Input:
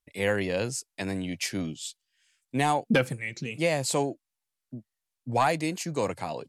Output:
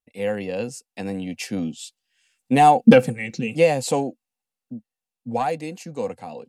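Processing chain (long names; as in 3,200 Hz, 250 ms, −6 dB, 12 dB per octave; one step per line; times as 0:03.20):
source passing by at 0:02.88, 5 m/s, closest 4.5 metres
hollow resonant body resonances 230/490/750/2,700 Hz, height 12 dB, ringing for 45 ms
level +3.5 dB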